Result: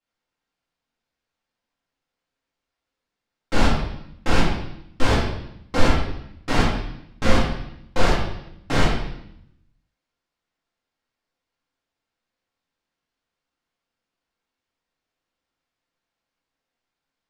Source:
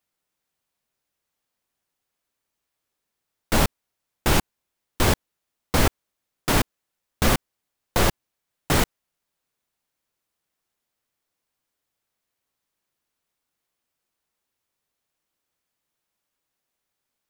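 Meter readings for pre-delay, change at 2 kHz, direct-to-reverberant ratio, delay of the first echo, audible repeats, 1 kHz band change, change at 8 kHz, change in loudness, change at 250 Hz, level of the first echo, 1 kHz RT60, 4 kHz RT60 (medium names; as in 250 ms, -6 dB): 4 ms, +1.5 dB, -8.5 dB, no echo, no echo, +1.5 dB, -8.0 dB, -0.5 dB, +2.5 dB, no echo, 0.75 s, 0.80 s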